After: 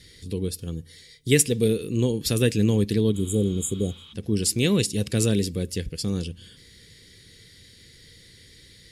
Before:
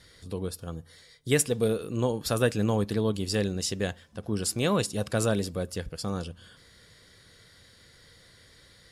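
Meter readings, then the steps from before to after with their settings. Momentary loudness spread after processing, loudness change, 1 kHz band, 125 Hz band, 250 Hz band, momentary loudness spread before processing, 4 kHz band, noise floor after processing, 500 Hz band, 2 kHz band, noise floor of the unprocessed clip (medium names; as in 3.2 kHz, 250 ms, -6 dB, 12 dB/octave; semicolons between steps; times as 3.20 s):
12 LU, +4.5 dB, -9.5 dB, +6.0 dB, +6.0 dB, 13 LU, +4.5 dB, -52 dBFS, +2.5 dB, +1.5 dB, -57 dBFS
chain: spectral replace 3.17–4.10 s, 830–6500 Hz before; high-order bell 930 Hz -15.5 dB; trim +6 dB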